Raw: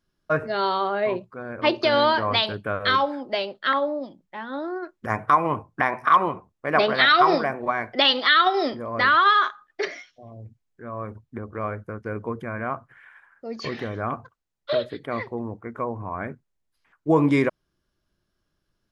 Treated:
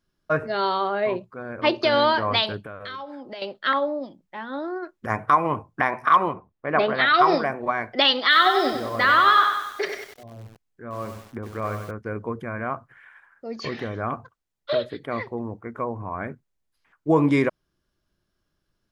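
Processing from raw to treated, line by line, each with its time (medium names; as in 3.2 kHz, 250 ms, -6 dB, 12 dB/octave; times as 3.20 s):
2.61–3.42 s: compression 4:1, threshold -35 dBFS
6.33–7.14 s: distance through air 250 m
8.21–11.91 s: bit-crushed delay 95 ms, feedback 55%, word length 7-bit, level -6 dB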